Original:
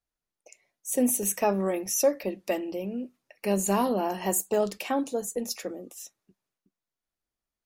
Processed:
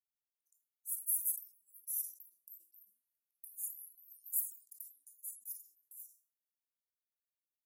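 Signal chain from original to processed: inverse Chebyshev high-pass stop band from 2400 Hz, stop band 80 dB; reverb RT60 2.1 s, pre-delay 18 ms, DRR 7 dB; sustainer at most 150 dB/s; gain -1 dB

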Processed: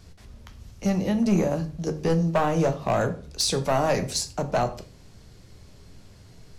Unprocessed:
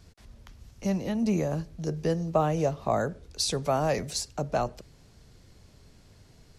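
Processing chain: hard clip -21 dBFS, distortion -14 dB; on a send: reverb RT60 0.40 s, pre-delay 10 ms, DRR 7.5 dB; on the sum: gain +4 dB

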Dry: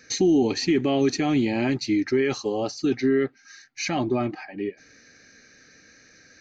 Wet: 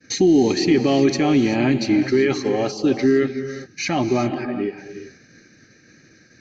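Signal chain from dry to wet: high shelf 5000 Hz -4 dB; non-linear reverb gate 0.41 s rising, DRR 8 dB; band noise 100–350 Hz -55 dBFS; expander -46 dBFS; gain +4.5 dB

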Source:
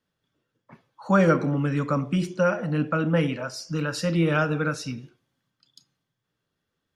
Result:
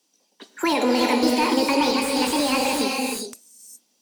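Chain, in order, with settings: HPF 120 Hz 24 dB/oct; resonant high shelf 1800 Hz +10 dB, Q 1.5; limiter -19 dBFS, peak gain reduction 11.5 dB; speed mistake 45 rpm record played at 78 rpm; non-linear reverb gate 0.44 s rising, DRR 2 dB; slew limiter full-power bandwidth 130 Hz; gain +6 dB

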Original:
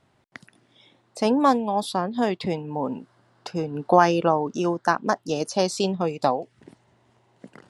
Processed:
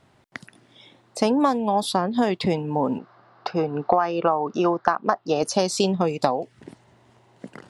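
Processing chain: 2.98–5.43 speaker cabinet 140–4600 Hz, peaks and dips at 170 Hz -3 dB, 260 Hz -6 dB, 740 Hz +6 dB, 1200 Hz +8 dB, 3200 Hz -5 dB; compressor 16:1, threshold -21 dBFS, peak gain reduction 15.5 dB; gain +5.5 dB

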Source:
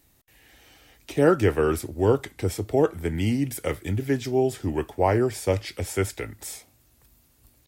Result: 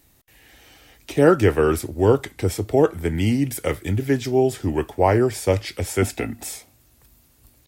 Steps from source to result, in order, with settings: 6.02–6.49 small resonant body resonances 240/710/2600 Hz, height 13 dB; gain +4 dB

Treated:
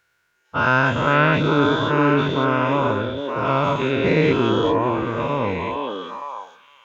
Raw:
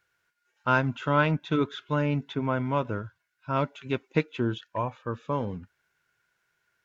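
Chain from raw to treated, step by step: spectral dilation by 0.24 s; on a send: delay with a stepping band-pass 0.461 s, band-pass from 380 Hz, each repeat 1.4 oct, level -1 dB; on the sum: gain +2 dB

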